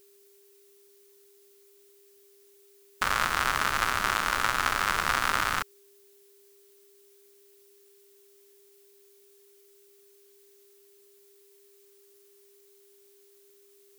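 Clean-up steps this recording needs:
notch filter 400 Hz, Q 30
downward expander −51 dBFS, range −21 dB

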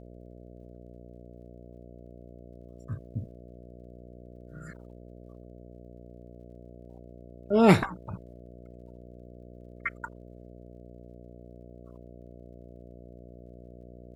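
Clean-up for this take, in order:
click removal
hum removal 60.2 Hz, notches 11

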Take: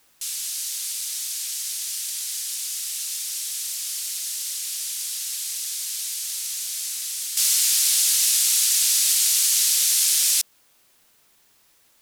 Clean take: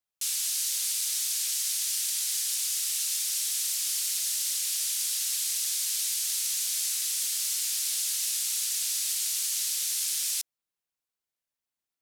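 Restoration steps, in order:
downward expander −52 dBFS, range −21 dB
level correction −10 dB, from 0:07.37

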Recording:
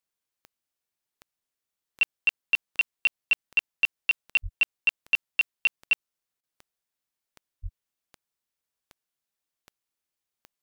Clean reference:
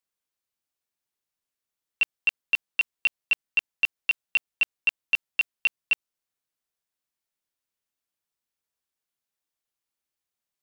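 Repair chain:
click removal
0:04.42–0:04.54: high-pass filter 140 Hz 24 dB per octave
0:07.62–0:07.74: high-pass filter 140 Hz 24 dB per octave
repair the gap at 0:06.41, 22 ms

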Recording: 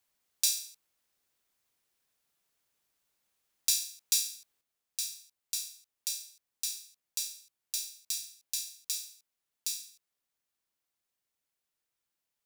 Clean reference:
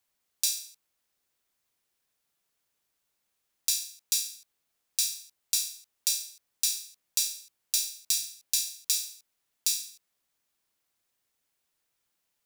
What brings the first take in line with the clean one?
clipped peaks rebuilt −10.5 dBFS
level correction +7.5 dB, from 0:04.61

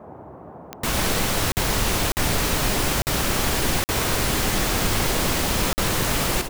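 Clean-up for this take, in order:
click removal
repair the gap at 0:01.52/0:02.12/0:03.02/0:03.84/0:05.73, 49 ms
noise reduction from a noise print 29 dB
echo removal 110 ms −7.5 dB

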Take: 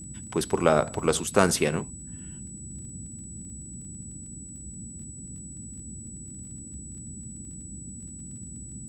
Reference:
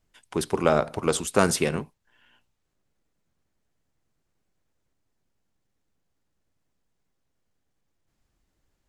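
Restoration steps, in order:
click removal
hum removal 63.9 Hz, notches 4
notch filter 7,900 Hz, Q 30
noise reduction from a noise print 30 dB

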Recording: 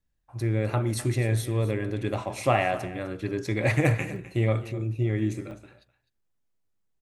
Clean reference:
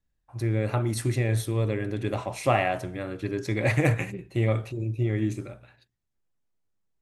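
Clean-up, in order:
repair the gap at 0:04.16/0:05.51/0:06.02, 1.9 ms
echo removal 255 ms −16 dB

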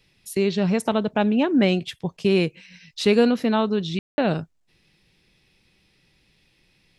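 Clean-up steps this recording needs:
ambience match 0:03.99–0:04.18

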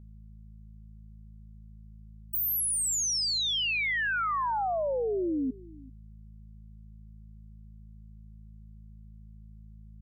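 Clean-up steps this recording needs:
hum removal 53.6 Hz, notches 4
echo removal 390 ms −21.5 dB

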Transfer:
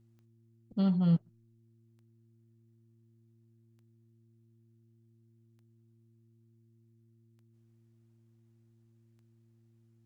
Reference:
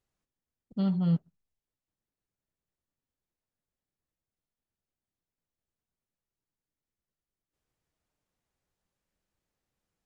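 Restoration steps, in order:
click removal
hum removal 114.1 Hz, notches 3

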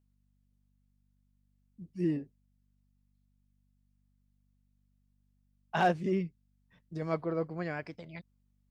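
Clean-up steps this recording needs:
clipped peaks rebuilt −18 dBFS
hum removal 48.8 Hz, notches 5

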